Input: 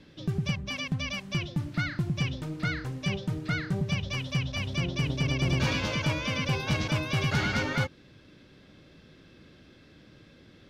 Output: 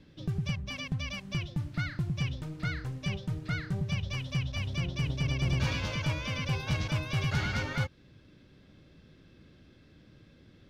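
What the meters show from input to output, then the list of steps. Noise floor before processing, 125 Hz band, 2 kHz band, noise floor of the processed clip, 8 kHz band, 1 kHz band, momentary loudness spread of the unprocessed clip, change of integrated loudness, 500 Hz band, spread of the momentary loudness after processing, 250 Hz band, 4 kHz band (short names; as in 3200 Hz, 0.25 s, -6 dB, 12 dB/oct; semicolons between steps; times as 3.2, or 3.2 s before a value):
-56 dBFS, -1.5 dB, -4.5 dB, -59 dBFS, -4.5 dB, -5.0 dB, 5 LU, -3.0 dB, -6.5 dB, 6 LU, -5.0 dB, -4.5 dB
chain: dynamic EQ 260 Hz, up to -6 dB, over -40 dBFS, Q 0.74; in parallel at -11 dB: crossover distortion -46.5 dBFS; on the sum: low shelf 200 Hz +8 dB; gain -6.5 dB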